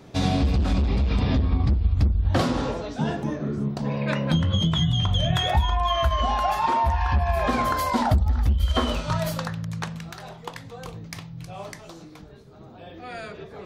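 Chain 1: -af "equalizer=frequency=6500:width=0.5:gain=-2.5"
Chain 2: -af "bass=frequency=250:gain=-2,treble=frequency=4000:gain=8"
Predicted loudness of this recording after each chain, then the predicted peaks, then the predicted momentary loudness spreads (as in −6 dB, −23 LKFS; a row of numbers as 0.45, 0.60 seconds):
−24.0, −24.5 LKFS; −9.0, −8.0 dBFS; 16, 16 LU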